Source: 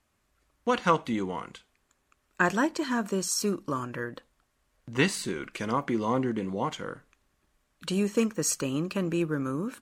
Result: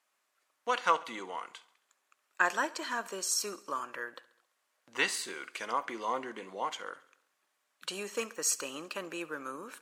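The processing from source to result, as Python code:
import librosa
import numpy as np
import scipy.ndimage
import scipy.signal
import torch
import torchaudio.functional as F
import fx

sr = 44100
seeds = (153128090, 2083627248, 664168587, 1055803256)

p1 = scipy.signal.sosfilt(scipy.signal.butter(2, 650.0, 'highpass', fs=sr, output='sos'), x)
p2 = p1 + fx.echo_feedback(p1, sr, ms=68, feedback_pct=60, wet_db=-20.5, dry=0)
y = F.gain(torch.from_numpy(p2), -1.5).numpy()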